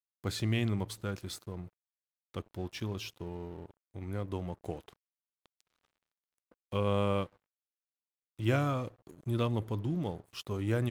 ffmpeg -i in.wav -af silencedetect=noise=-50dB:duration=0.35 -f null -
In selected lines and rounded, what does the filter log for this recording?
silence_start: 1.68
silence_end: 2.34 | silence_duration: 0.66
silence_start: 4.93
silence_end: 5.46 | silence_duration: 0.53
silence_start: 5.60
silence_end: 6.52 | silence_duration: 0.91
silence_start: 7.36
silence_end: 8.39 | silence_duration: 1.03